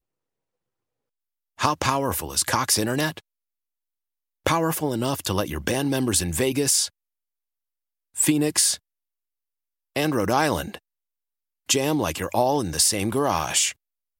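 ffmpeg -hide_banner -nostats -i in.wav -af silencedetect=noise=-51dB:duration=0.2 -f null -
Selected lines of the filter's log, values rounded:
silence_start: 0.00
silence_end: 1.58 | silence_duration: 1.58
silence_start: 3.20
silence_end: 4.46 | silence_duration: 1.26
silence_start: 6.90
silence_end: 8.15 | silence_duration: 1.25
silence_start: 8.78
silence_end: 9.96 | silence_duration: 1.17
silence_start: 10.79
silence_end: 11.69 | silence_duration: 0.90
silence_start: 13.73
silence_end: 14.20 | silence_duration: 0.47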